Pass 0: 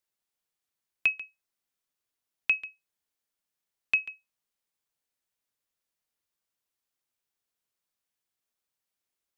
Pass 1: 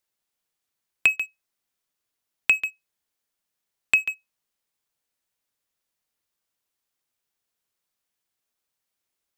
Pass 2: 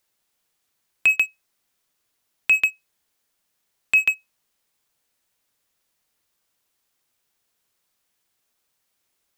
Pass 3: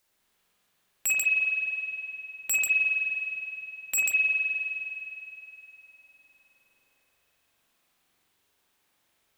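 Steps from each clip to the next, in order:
downward compressor 4 to 1, threshold −31 dBFS, peak gain reduction 9.5 dB; leveller curve on the samples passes 2; level +8 dB
brickwall limiter −17.5 dBFS, peak gain reduction 11.5 dB; level +8.5 dB
wave folding −18.5 dBFS; spring reverb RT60 3.3 s, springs 43 ms, chirp 20 ms, DRR −5 dB

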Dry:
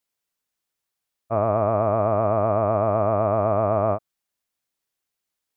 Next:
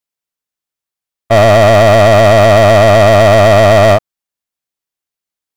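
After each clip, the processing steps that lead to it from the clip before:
leveller curve on the samples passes 5
level +6.5 dB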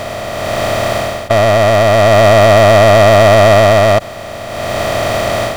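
compressor on every frequency bin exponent 0.2
automatic gain control gain up to 11.5 dB
level −1 dB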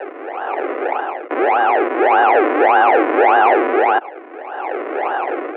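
sample-and-hold swept by an LFO 41×, swing 100% 1.7 Hz
single-sideband voice off tune +150 Hz 190–2,200 Hz
level −4 dB

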